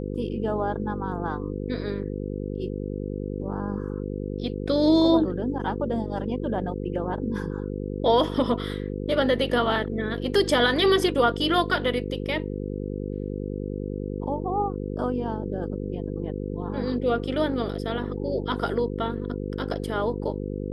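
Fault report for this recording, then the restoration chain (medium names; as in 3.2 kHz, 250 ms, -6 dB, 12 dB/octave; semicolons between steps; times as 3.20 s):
buzz 50 Hz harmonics 10 -31 dBFS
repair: de-hum 50 Hz, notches 10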